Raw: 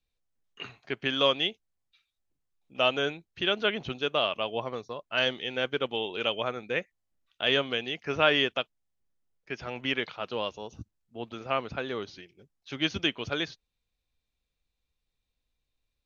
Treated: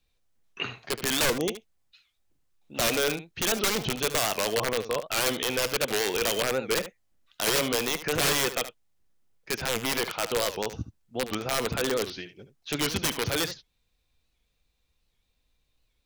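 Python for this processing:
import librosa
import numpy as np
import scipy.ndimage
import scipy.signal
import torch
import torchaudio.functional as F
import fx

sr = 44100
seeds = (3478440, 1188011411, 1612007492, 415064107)

p1 = fx.spec_box(x, sr, start_s=1.26, length_s=0.22, low_hz=1200.0, high_hz=5400.0, gain_db=-26)
p2 = fx.dynamic_eq(p1, sr, hz=480.0, q=7.5, threshold_db=-46.0, ratio=4.0, max_db=6)
p3 = fx.over_compress(p2, sr, threshold_db=-35.0, ratio=-1.0)
p4 = p2 + (p3 * librosa.db_to_amplitude(-1.5))
p5 = (np.mod(10.0 ** (18.0 / 20.0) * p4 + 1.0, 2.0) - 1.0) / 10.0 ** (18.0 / 20.0)
p6 = p5 + fx.echo_single(p5, sr, ms=73, db=-12.5, dry=0)
y = fx.record_warp(p6, sr, rpm=78.0, depth_cents=160.0)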